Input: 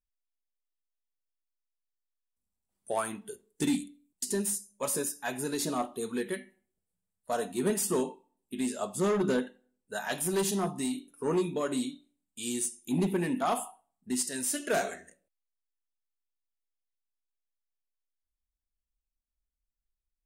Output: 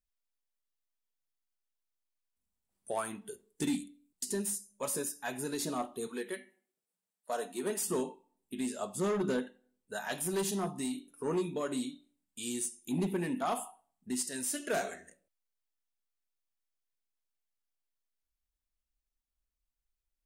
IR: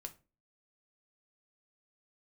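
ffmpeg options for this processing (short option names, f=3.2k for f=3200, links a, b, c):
-filter_complex "[0:a]asplit=2[a][b];[b]acompressor=threshold=-43dB:ratio=6,volume=-3dB[c];[a][c]amix=inputs=2:normalize=0,asettb=1/sr,asplit=3[d][e][f];[d]atrim=end=6.074[g];[e]atrim=start=6.07:end=7.88,asetpts=PTS-STARTPTS,afade=t=in:d=0.004:c=qsin,afade=t=out:st=1.806:d=0.004:c=qsin,highpass=300[h];[f]atrim=start=7.876[i];[g][h]acrossfade=d=0.004:c1=hsin:c2=qsin[j];[j][i]acrossfade=d=0.004:c1=qsin:c2=hsin,volume=-5dB"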